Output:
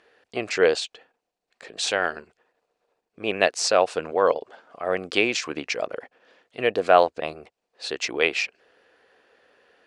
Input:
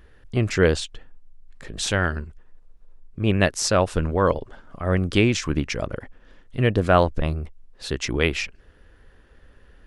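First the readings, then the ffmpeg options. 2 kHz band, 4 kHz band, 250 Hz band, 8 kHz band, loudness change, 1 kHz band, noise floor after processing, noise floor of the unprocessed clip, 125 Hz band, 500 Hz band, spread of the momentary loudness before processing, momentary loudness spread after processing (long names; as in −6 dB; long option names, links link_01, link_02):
+0.5 dB, +1.0 dB, −9.0 dB, −1.5 dB, −1.0 dB, +2.0 dB, −82 dBFS, −53 dBFS, −22.0 dB, +1.0 dB, 15 LU, 15 LU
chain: -af "highpass=410,equalizer=frequency=470:width_type=q:width=4:gain=5,equalizer=frequency=720:width_type=q:width=4:gain=7,equalizer=frequency=2500:width_type=q:width=4:gain=5,equalizer=frequency=4400:width_type=q:width=4:gain=5,lowpass=frequency=9100:width=0.5412,lowpass=frequency=9100:width=1.3066,volume=-1.5dB"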